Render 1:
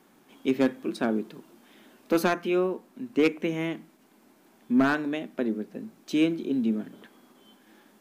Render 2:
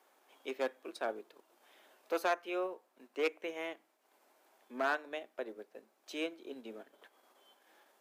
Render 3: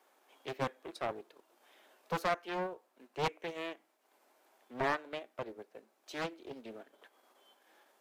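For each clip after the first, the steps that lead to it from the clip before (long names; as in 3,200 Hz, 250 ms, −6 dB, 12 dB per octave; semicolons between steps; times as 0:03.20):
four-pole ladder high-pass 440 Hz, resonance 30%; transient designer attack −2 dB, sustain −6 dB
highs frequency-modulated by the lows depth 0.6 ms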